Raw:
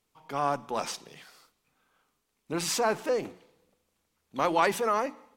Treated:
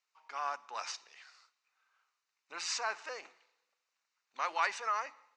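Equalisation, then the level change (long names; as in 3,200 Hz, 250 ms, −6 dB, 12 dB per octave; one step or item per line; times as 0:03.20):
Chebyshev high-pass filter 1,300 Hz, order 2
Butterworth low-pass 6,900 Hz 36 dB per octave
notch filter 3,300 Hz, Q 6.5
−3.0 dB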